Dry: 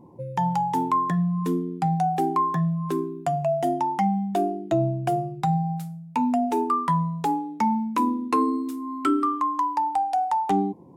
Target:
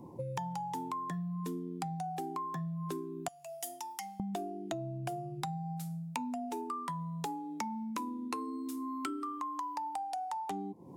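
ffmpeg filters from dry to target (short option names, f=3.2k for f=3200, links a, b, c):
-filter_complex "[0:a]acrossover=split=170|3600[a][b][c];[c]acontrast=77[d];[a][b][d]amix=inputs=3:normalize=0,asettb=1/sr,asplit=3[e][f][g];[e]atrim=end=3.284[h];[f]atrim=start=3.28:end=4.2,asetpts=PTS-STARTPTS,afade=t=in:d=0.004:c=qsin,afade=t=out:st=0.916:d=0.004:c=qsin,aderivative[i];[g]atrim=start=4.196[j];[h][i]acrossfade=d=0.004:c1=hsin:c2=qsin[k];[k][j]acrossfade=d=0.004:c1=qsin:c2=hsin,acompressor=threshold=-35dB:ratio=16"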